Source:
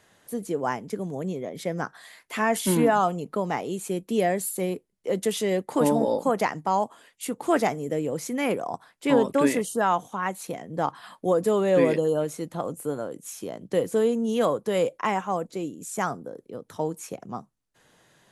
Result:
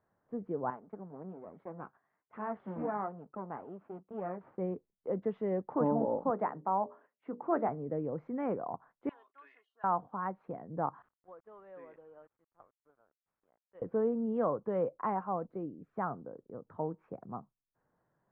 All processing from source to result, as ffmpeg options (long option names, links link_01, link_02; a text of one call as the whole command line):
ffmpeg -i in.wav -filter_complex "[0:a]asettb=1/sr,asplit=3[link_01][link_02][link_03];[link_01]atrim=end=0.704[link_04];[link_02]atrim=start=0.7:end=4.58,asetpts=PTS-STARTPTS,afade=type=in:duration=0.004:curve=qsin,afade=type=out:start_time=3.876:duration=0.004:curve=qsin,aeval=exprs='if(lt(val(0),0),0.251*val(0),val(0))':channel_layout=same,highpass=160,lowpass=5600,flanger=delay=0.5:depth=7.4:regen=-52:speed=1.2:shape=triangular[link_05];[link_03]atrim=start=4.576[link_06];[link_04][link_05]acrossfade=duration=0.004:curve1=hsin:curve2=qsin[link_07];[link_07][link_06]acrossfade=duration=0.004:curve1=qsin:curve2=hsin,asettb=1/sr,asplit=3[link_08][link_09][link_10];[link_08]atrim=end=6.304[link_11];[link_09]atrim=start=6.3:end=7.69,asetpts=PTS-STARTPTS,afade=type=in:duration=0.004:curve=qsin,afade=type=out:start_time=1.386:duration=0.004:curve=qsin,highpass=180,lowpass=3400,bandreject=frequency=60:width_type=h:width=6,bandreject=frequency=120:width_type=h:width=6,bandreject=frequency=180:width_type=h:width=6,bandreject=frequency=240:width_type=h:width=6,bandreject=frequency=300:width_type=h:width=6,bandreject=frequency=360:width_type=h:width=6,bandreject=frequency=420:width_type=h:width=6,bandreject=frequency=480:width_type=h:width=6,bandreject=frequency=540:width_type=h:width=6,bandreject=frequency=600:width_type=h:width=6[link_12];[link_10]atrim=start=7.686[link_13];[link_11][link_12]acrossfade=duration=0.004:curve1=hsin:curve2=qsin[link_14];[link_14][link_13]acrossfade=duration=0.004:curve1=qsin:curve2=hsin,asettb=1/sr,asplit=3[link_15][link_16][link_17];[link_15]atrim=end=9.094[link_18];[link_16]atrim=start=9.09:end=9.84,asetpts=PTS-STARTPTS,afade=type=in:duration=0.004:curve=qsin,afade=type=out:start_time=0.746:duration=0.004:curve=qsin,asuperpass=centerf=4200:order=4:qfactor=0.99,aecho=1:1:2.8:0.58,atrim=end_sample=33075[link_19];[link_17]atrim=start=9.836[link_20];[link_18][link_19]acrossfade=duration=0.004:curve1=hsin:curve2=qsin[link_21];[link_21][link_20]acrossfade=duration=0.004:curve1=qsin:curve2=hsin,asettb=1/sr,asplit=3[link_22][link_23][link_24];[link_22]atrim=end=11.024[link_25];[link_23]atrim=start=11.02:end=13.82,asetpts=PTS-STARTPTS,afade=type=in:duration=0.004:curve=qsin,afade=type=out:start_time=2.796:duration=0.004:curve=qsin,lowpass=frequency=4600:width=0.5412,lowpass=frequency=4600:width=1.3066,aderivative,aeval=exprs='val(0)*gte(abs(val(0)),0.00251)':channel_layout=same[link_26];[link_24]atrim=start=13.816[link_27];[link_25][link_26]acrossfade=duration=0.004:curve1=hsin:curve2=qsin[link_28];[link_28][link_27]acrossfade=duration=0.004:curve1=qsin:curve2=hsin,agate=range=-8dB:threshold=-49dB:ratio=16:detection=peak,lowpass=frequency=1300:width=0.5412,lowpass=frequency=1300:width=1.3066,equalizer=frequency=400:width=0.58:gain=-3.5,volume=-5dB" out.wav